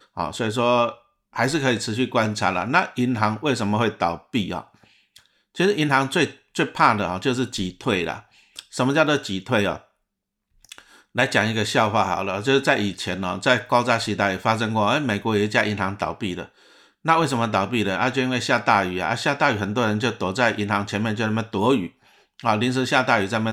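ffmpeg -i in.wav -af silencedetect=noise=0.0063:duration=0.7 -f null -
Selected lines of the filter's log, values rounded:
silence_start: 9.82
silence_end: 10.65 | silence_duration: 0.83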